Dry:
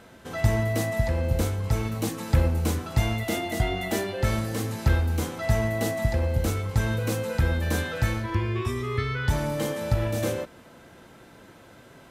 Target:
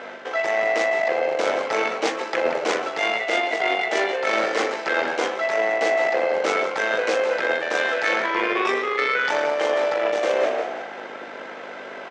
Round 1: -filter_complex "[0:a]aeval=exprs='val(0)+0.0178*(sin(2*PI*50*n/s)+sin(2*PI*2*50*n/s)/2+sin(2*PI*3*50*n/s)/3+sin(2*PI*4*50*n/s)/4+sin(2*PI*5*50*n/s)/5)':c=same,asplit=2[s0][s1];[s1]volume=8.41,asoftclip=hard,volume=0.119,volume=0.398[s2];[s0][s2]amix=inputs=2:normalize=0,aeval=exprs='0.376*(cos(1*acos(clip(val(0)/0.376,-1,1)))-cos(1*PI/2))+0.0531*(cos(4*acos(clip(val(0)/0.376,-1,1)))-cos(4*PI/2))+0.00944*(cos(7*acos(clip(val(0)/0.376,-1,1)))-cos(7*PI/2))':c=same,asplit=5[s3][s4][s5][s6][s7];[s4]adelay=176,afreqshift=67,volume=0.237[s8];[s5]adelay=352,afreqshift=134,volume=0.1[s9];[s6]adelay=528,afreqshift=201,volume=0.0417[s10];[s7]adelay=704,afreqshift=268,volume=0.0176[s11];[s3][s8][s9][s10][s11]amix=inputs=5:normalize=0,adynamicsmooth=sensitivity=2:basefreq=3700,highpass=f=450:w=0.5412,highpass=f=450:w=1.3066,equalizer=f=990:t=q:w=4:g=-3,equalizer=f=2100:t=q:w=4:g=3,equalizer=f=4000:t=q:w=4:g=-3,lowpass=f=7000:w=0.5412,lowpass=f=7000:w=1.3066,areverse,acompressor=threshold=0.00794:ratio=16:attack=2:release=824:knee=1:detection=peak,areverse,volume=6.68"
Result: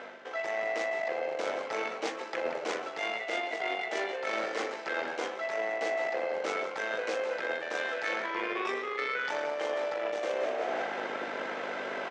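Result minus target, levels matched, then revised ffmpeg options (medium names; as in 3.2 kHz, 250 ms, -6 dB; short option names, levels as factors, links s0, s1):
compression: peak gain reduction +11 dB
-filter_complex "[0:a]aeval=exprs='val(0)+0.0178*(sin(2*PI*50*n/s)+sin(2*PI*2*50*n/s)/2+sin(2*PI*3*50*n/s)/3+sin(2*PI*4*50*n/s)/4+sin(2*PI*5*50*n/s)/5)':c=same,asplit=2[s0][s1];[s1]volume=8.41,asoftclip=hard,volume=0.119,volume=0.398[s2];[s0][s2]amix=inputs=2:normalize=0,aeval=exprs='0.376*(cos(1*acos(clip(val(0)/0.376,-1,1)))-cos(1*PI/2))+0.0531*(cos(4*acos(clip(val(0)/0.376,-1,1)))-cos(4*PI/2))+0.00944*(cos(7*acos(clip(val(0)/0.376,-1,1)))-cos(7*PI/2))':c=same,asplit=5[s3][s4][s5][s6][s7];[s4]adelay=176,afreqshift=67,volume=0.237[s8];[s5]adelay=352,afreqshift=134,volume=0.1[s9];[s6]adelay=528,afreqshift=201,volume=0.0417[s10];[s7]adelay=704,afreqshift=268,volume=0.0176[s11];[s3][s8][s9][s10][s11]amix=inputs=5:normalize=0,adynamicsmooth=sensitivity=2:basefreq=3700,highpass=f=450:w=0.5412,highpass=f=450:w=1.3066,equalizer=f=990:t=q:w=4:g=-3,equalizer=f=2100:t=q:w=4:g=3,equalizer=f=4000:t=q:w=4:g=-3,lowpass=f=7000:w=0.5412,lowpass=f=7000:w=1.3066,areverse,acompressor=threshold=0.0299:ratio=16:attack=2:release=824:knee=1:detection=peak,areverse,volume=6.68"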